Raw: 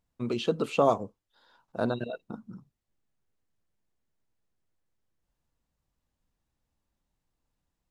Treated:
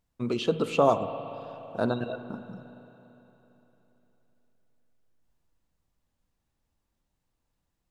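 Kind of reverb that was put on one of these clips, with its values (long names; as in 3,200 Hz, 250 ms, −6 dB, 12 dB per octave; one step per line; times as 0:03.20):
spring reverb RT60 3.6 s, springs 37/57 ms, chirp 65 ms, DRR 10 dB
level +1.5 dB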